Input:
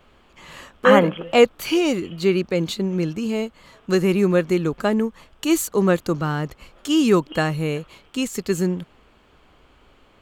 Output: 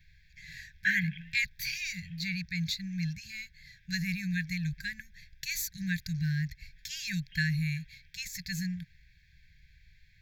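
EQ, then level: brick-wall FIR band-stop 180–1500 Hz; fixed phaser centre 2000 Hz, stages 8; -1.5 dB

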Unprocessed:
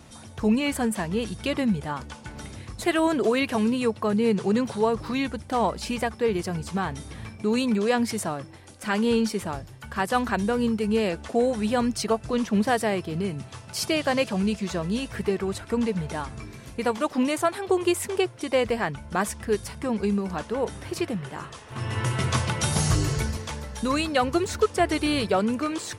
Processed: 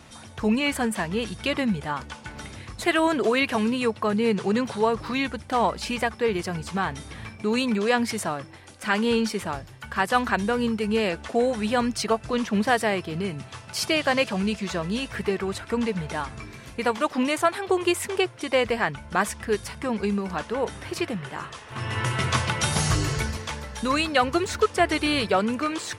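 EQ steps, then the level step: bell 2000 Hz +6 dB 2.8 oct; -1.5 dB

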